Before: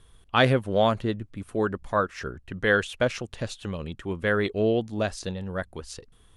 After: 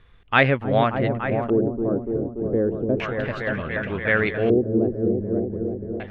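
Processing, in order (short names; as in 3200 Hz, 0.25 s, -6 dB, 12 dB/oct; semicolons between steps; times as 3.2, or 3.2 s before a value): repeats that get brighter 0.302 s, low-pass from 400 Hz, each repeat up 1 oct, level -3 dB; LFO low-pass square 0.32 Hz 350–2200 Hz; speed mistake 24 fps film run at 25 fps; gain +1 dB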